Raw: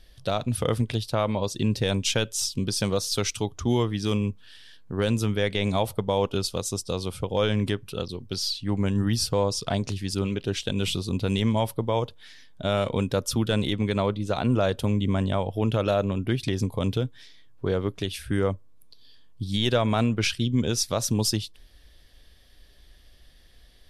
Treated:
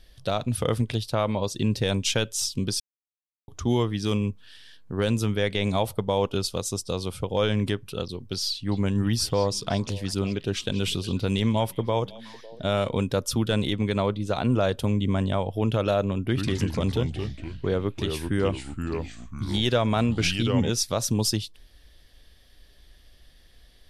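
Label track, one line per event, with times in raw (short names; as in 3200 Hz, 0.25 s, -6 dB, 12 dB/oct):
2.800000	3.480000	mute
8.530000	12.740000	delay with a stepping band-pass 0.184 s, band-pass from 3700 Hz, each repeat -1.4 oct, level -12 dB
16.250000	20.700000	echoes that change speed 83 ms, each echo -3 st, echoes 3, each echo -6 dB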